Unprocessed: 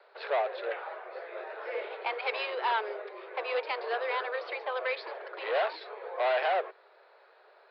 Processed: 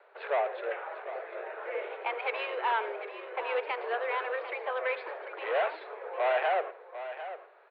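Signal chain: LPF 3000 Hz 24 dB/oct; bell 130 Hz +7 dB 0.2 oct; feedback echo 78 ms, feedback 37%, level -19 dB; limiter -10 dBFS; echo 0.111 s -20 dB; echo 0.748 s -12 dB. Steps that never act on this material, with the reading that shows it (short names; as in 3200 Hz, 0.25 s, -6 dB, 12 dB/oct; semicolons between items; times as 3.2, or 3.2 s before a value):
bell 130 Hz: input band starts at 320 Hz; limiter -10 dBFS: input peak -17.0 dBFS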